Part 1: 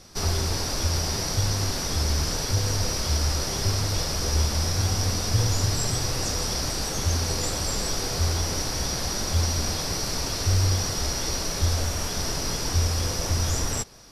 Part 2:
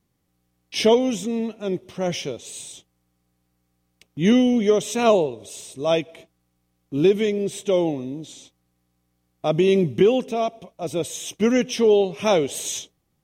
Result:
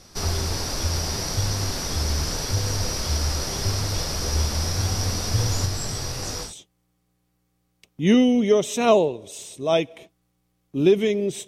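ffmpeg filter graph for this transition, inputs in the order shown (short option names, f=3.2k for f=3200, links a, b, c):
-filter_complex "[0:a]asplit=3[a][b][c];[a]afade=t=out:st=5.65:d=0.02[d];[b]flanger=delay=20:depth=3:speed=2.2,afade=t=in:st=5.65:d=0.02,afade=t=out:st=6.54:d=0.02[e];[c]afade=t=in:st=6.54:d=0.02[f];[d][e][f]amix=inputs=3:normalize=0,apad=whole_dur=11.47,atrim=end=11.47,atrim=end=6.54,asetpts=PTS-STARTPTS[g];[1:a]atrim=start=2.58:end=7.65,asetpts=PTS-STARTPTS[h];[g][h]acrossfade=d=0.14:c1=tri:c2=tri"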